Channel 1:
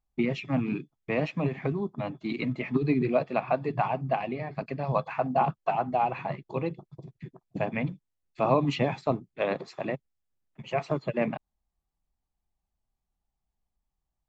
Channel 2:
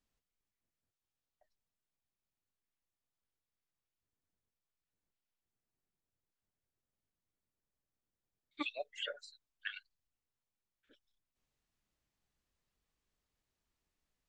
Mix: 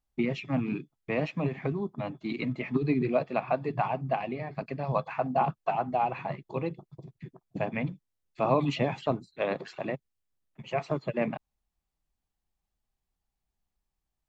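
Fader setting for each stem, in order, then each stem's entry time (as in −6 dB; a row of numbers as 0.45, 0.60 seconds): −1.5, −7.5 decibels; 0.00, 0.00 seconds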